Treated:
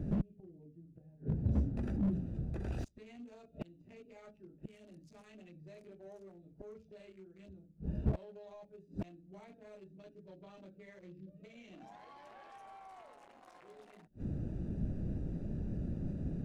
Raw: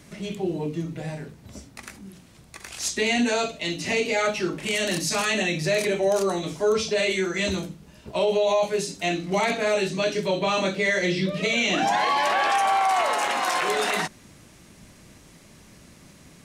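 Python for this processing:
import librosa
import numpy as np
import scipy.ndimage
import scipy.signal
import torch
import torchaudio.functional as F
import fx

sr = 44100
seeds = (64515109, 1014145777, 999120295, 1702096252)

y = fx.wiener(x, sr, points=41)
y = fx.high_shelf(y, sr, hz=5600.0, db=5.5)
y = fx.gate_flip(y, sr, shuts_db=-28.0, range_db=-38)
y = fx.tilt_eq(y, sr, slope=-2.5)
y = fx.slew_limit(y, sr, full_power_hz=3.5)
y = y * librosa.db_to_amplitude(6.5)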